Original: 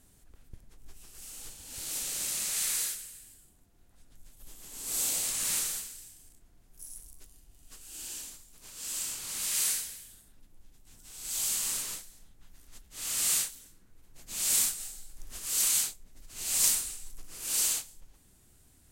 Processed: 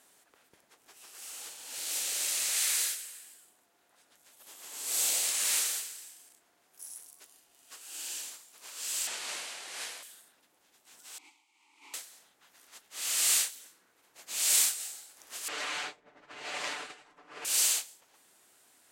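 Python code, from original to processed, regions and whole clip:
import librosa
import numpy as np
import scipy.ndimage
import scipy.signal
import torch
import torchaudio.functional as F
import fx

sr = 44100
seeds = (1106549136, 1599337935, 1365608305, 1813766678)

y = fx.chain(x, sr, fx.cvsd(bps=64000),
    fx.high_shelf(hz=5400.0, db=-10.0),
    fx.over_compress(threshold_db=-43.0, ratio=-1.0), at=(9.07, 10.03))
y = fx.chain(y, sr, fx.over_compress(threshold_db=-38.0, ratio=-0.5),
    fx.vowel_filter(vowel='u'), at=(11.18, 11.94))
y = fx.chain(y, sr, fx.lowpass(hz=1600.0, slope=12),
    fx.comb(ms=6.8, depth=0.66),
    fx.env_flatten(amount_pct=50), at=(15.48, 17.45))
y = fx.dynamic_eq(y, sr, hz=1100.0, q=1.2, threshold_db=-58.0, ratio=4.0, max_db=-5)
y = scipy.signal.sosfilt(scipy.signal.butter(2, 610.0, 'highpass', fs=sr, output='sos'), y)
y = fx.high_shelf(y, sr, hz=4700.0, db=-8.0)
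y = F.gain(torch.from_numpy(y), 7.5).numpy()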